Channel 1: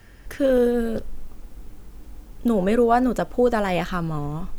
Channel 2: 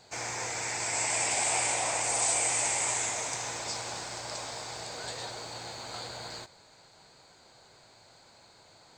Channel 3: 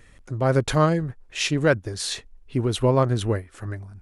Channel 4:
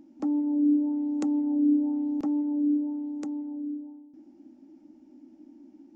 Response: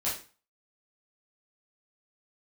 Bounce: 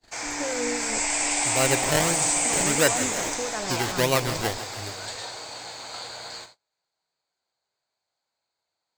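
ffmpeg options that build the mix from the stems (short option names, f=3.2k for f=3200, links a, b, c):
-filter_complex "[0:a]lowpass=12k,alimiter=limit=-17.5dB:level=0:latency=1,acrossover=split=630[a][b];[a]aeval=exprs='val(0)*(1-0.7/2+0.7/2*cos(2*PI*3*n/s))':c=same[c];[b]aeval=exprs='val(0)*(1-0.7/2-0.7/2*cos(2*PI*3*n/s))':c=same[d];[c][d]amix=inputs=2:normalize=0,volume=1dB[e];[1:a]volume=2.5dB,asplit=2[f][g];[g]volume=-13dB[h];[2:a]acrusher=samples=25:mix=1:aa=0.000001:lfo=1:lforange=25:lforate=1.6,adelay=1150,volume=0.5dB,asplit=2[i][j];[j]volume=-13dB[k];[3:a]volume=-7dB[l];[4:a]atrim=start_sample=2205[m];[h][m]afir=irnorm=-1:irlink=0[n];[k]aecho=0:1:154|308|462|616|770|924|1078|1232|1386:1|0.57|0.325|0.185|0.106|0.0602|0.0343|0.0195|0.0111[o];[e][f][i][l][n][o]amix=inputs=6:normalize=0,agate=range=-29dB:threshold=-46dB:ratio=16:detection=peak,lowshelf=f=370:g=-11"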